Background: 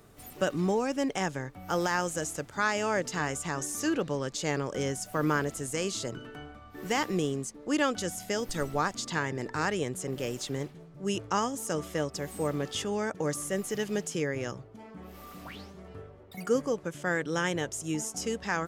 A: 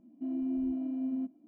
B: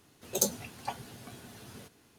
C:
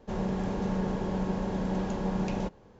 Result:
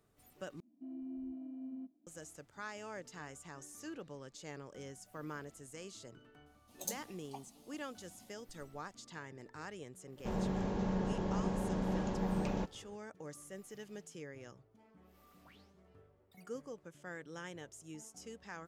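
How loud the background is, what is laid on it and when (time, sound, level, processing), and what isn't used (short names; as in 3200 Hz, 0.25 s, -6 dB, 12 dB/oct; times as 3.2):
background -17.5 dB
0.6 replace with A -12 dB
6.46 add B -12 dB + fixed phaser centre 430 Hz, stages 6
10.17 add C -5 dB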